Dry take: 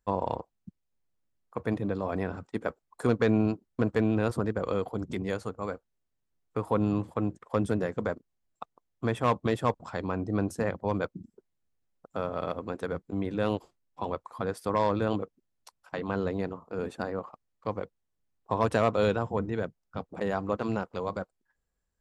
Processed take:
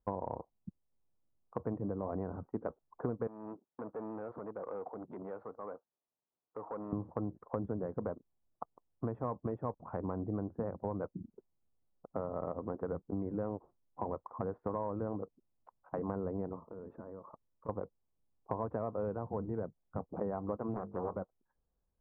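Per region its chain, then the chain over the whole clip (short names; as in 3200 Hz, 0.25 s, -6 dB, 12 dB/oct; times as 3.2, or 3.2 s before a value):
3.27–6.93 weighting filter A + compressor 2:1, threshold -38 dBFS + core saturation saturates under 1800 Hz
16.6–17.69 Butterworth band-stop 760 Hz, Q 6.5 + compressor 8:1, threshold -43 dBFS
20.74–21.16 notches 50/100/150/200/250/300/350/400/450 Hz + Doppler distortion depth 0.67 ms
whole clip: LPF 1100 Hz 24 dB/oct; compressor, threshold -33 dBFS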